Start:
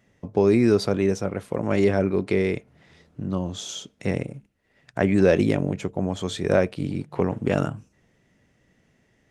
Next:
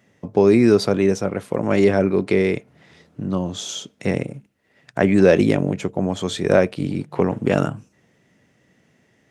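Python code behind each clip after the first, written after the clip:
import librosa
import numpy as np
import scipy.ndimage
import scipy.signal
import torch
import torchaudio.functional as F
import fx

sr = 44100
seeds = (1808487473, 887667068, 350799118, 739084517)

y = scipy.signal.sosfilt(scipy.signal.butter(2, 110.0, 'highpass', fs=sr, output='sos'), x)
y = F.gain(torch.from_numpy(y), 4.5).numpy()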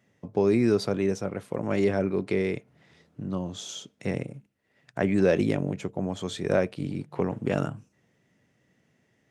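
y = fx.peak_eq(x, sr, hz=120.0, db=2.5, octaves=0.77)
y = F.gain(torch.from_numpy(y), -8.5).numpy()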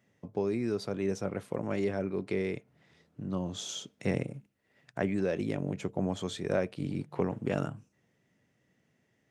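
y = fx.rider(x, sr, range_db=5, speed_s=0.5)
y = F.gain(torch.from_numpy(y), -5.5).numpy()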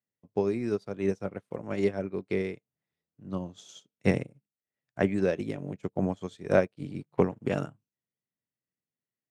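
y = fx.upward_expand(x, sr, threshold_db=-49.0, expansion=2.5)
y = F.gain(torch.from_numpy(y), 8.5).numpy()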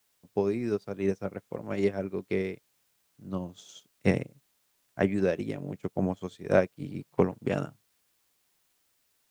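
y = fx.quant_dither(x, sr, seeds[0], bits=12, dither='triangular')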